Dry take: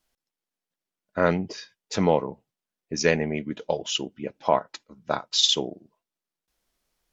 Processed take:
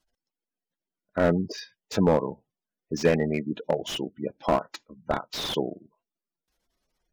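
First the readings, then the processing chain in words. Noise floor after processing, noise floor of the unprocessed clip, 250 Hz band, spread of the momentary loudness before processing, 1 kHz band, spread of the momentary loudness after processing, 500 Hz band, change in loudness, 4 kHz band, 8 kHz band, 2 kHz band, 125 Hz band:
under -85 dBFS, under -85 dBFS, +1.5 dB, 16 LU, -2.5 dB, 13 LU, 0.0 dB, -2.0 dB, -9.5 dB, n/a, -4.0 dB, +1.5 dB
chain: spectral gate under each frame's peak -20 dB strong; slew limiter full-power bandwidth 88 Hz; gain +1.5 dB

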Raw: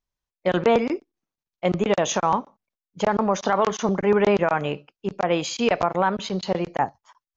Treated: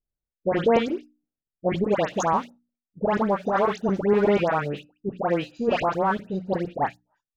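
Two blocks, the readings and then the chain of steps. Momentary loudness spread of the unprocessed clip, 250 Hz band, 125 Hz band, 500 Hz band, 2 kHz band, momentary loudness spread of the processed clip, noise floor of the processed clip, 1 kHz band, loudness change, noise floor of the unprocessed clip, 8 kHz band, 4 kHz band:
9 LU, -1.0 dB, -1.0 dB, -1.0 dB, -2.5 dB, 9 LU, under -85 dBFS, -1.5 dB, -1.5 dB, under -85 dBFS, n/a, -6.5 dB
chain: Wiener smoothing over 41 samples; notches 60/120/180/240/300 Hz; dispersion highs, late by 0.118 s, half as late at 1800 Hz

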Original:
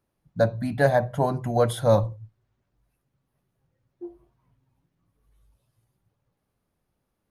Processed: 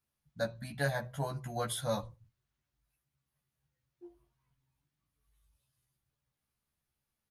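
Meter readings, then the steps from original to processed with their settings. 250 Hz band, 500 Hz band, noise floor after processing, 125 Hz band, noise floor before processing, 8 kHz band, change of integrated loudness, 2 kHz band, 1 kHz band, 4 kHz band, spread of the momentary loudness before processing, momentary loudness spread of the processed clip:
-13.5 dB, -15.0 dB, under -85 dBFS, -12.5 dB, -78 dBFS, -1.5 dB, -13.0 dB, -7.5 dB, -13.0 dB, -3.5 dB, 21 LU, 4 LU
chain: passive tone stack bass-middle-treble 5-5-5; doubler 14 ms -2 dB; gain +2 dB

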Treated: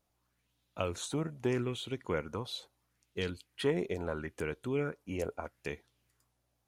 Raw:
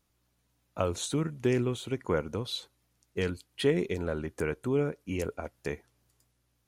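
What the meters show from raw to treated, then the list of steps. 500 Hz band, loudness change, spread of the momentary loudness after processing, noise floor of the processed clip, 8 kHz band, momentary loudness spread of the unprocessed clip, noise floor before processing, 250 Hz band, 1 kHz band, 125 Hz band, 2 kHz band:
-4.5 dB, -4.5 dB, 10 LU, -79 dBFS, -5.5 dB, 11 LU, -75 dBFS, -5.0 dB, -3.0 dB, -5.5 dB, -3.0 dB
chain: LFO bell 0.77 Hz 640–3700 Hz +10 dB; gain -5.5 dB

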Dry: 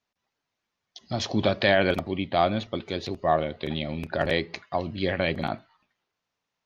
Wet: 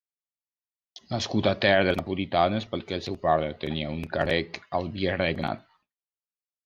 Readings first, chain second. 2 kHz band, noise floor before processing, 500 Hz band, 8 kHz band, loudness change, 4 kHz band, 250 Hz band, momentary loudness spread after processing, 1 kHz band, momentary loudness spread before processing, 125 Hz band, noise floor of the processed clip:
0.0 dB, -84 dBFS, 0.0 dB, n/a, 0.0 dB, 0.0 dB, 0.0 dB, 10 LU, 0.0 dB, 10 LU, 0.0 dB, under -85 dBFS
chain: expander -56 dBFS

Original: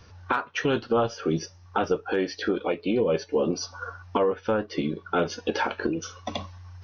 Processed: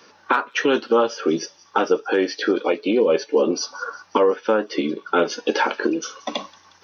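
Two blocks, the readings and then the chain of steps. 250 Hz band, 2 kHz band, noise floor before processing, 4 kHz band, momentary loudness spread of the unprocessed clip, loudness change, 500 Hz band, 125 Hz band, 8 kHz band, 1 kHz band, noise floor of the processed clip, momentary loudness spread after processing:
+5.0 dB, +6.5 dB, -52 dBFS, +6.5 dB, 9 LU, +6.0 dB, +6.5 dB, -7.0 dB, n/a, +6.0 dB, -54 dBFS, 8 LU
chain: HPF 240 Hz 24 dB/oct; notch 700 Hz, Q 12; thin delay 0.18 s, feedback 63%, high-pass 4400 Hz, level -18 dB; gain +6.5 dB

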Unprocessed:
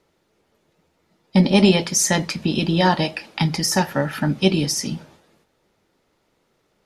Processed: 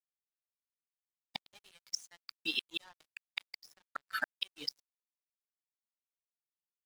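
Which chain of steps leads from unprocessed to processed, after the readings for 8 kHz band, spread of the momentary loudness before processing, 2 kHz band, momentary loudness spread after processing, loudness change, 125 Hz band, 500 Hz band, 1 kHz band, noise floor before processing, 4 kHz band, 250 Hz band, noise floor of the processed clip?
-25.5 dB, 9 LU, -14.0 dB, 18 LU, -20.5 dB, under -40 dB, -34.5 dB, -24.5 dB, -68 dBFS, -15.0 dB, -36.0 dB, under -85 dBFS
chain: per-bin expansion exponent 2; HPF 1200 Hz 12 dB/oct; high shelf 6900 Hz -3.5 dB; notch 2500 Hz, Q 27; in parallel at -1.5 dB: compressor 8:1, threshold -35 dBFS, peak gain reduction 16 dB; on the sum: soft clip -10 dBFS, distortion -27 dB; flipped gate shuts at -22 dBFS, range -28 dB; crossover distortion -52.5 dBFS; gain +2.5 dB

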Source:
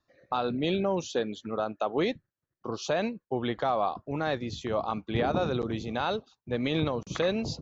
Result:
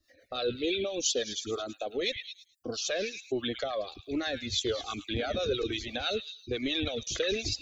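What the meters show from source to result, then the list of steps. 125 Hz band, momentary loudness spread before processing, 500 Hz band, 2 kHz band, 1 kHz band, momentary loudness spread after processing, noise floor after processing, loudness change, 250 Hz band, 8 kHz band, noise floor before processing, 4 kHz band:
-8.0 dB, 6 LU, -2.5 dB, 0.0 dB, -10.0 dB, 7 LU, -64 dBFS, -2.0 dB, -5.0 dB, n/a, under -85 dBFS, +6.5 dB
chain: reverb removal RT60 0.72 s; high shelf 2500 Hz +10 dB; in parallel at +1 dB: negative-ratio compressor -31 dBFS; on the sum: harmonic tremolo 6 Hz, depth 70%, crossover 750 Hz; fixed phaser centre 390 Hz, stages 4; on a send: delay with a stepping band-pass 0.108 s, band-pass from 2500 Hz, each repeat 0.7 oct, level -6.5 dB; on the sum: cascading flanger falling 1.2 Hz; gain +3 dB

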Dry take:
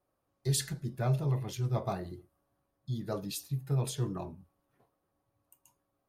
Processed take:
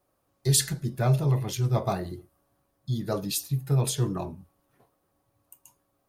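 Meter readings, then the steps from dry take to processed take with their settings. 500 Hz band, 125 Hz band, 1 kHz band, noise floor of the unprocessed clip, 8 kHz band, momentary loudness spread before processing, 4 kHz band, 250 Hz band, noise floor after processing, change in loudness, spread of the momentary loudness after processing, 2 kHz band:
+6.5 dB, +6.5 dB, +6.5 dB, -81 dBFS, +10.0 dB, 12 LU, +8.5 dB, +6.5 dB, -74 dBFS, +7.0 dB, 13 LU, +7.0 dB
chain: high shelf 4400 Hz +4.5 dB; gain +6.5 dB

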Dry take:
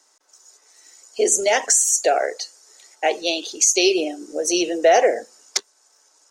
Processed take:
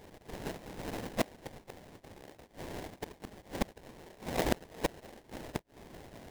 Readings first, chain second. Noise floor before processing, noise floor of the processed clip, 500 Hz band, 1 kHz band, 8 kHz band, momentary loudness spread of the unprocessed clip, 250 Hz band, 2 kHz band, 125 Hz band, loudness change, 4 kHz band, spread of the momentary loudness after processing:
-60 dBFS, -64 dBFS, -20.5 dB, -18.5 dB, -31.5 dB, 12 LU, -12.5 dB, -17.5 dB, n/a, -20.5 dB, -21.5 dB, 18 LU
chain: HPF 44 Hz 24 dB/oct; spectral gate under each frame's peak -15 dB weak; reverse; compressor 12:1, threshold -38 dBFS, peak gain reduction 19.5 dB; reverse; flipped gate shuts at -34 dBFS, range -29 dB; sample-rate reducer 1300 Hz, jitter 20%; gain +18 dB

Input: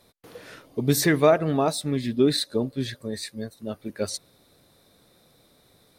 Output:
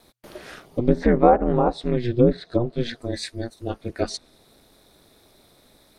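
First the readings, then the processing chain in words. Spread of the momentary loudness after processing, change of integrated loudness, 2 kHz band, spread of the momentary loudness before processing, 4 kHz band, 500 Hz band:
15 LU, +2.5 dB, -4.0 dB, 16 LU, -5.5 dB, +2.5 dB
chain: treble ducked by the level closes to 980 Hz, closed at -17.5 dBFS; ring modulator 120 Hz; gain +6.5 dB

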